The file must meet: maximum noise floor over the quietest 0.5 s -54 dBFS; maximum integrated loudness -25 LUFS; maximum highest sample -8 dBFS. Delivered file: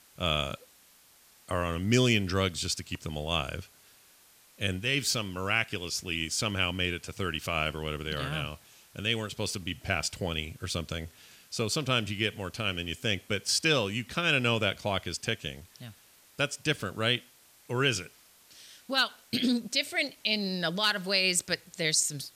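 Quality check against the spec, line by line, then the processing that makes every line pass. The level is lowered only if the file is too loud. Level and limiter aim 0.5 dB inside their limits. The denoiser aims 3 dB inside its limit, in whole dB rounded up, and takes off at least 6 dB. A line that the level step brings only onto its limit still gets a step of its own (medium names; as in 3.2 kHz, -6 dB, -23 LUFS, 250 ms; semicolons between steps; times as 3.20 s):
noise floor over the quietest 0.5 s -60 dBFS: pass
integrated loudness -29.5 LUFS: pass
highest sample -12.5 dBFS: pass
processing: none needed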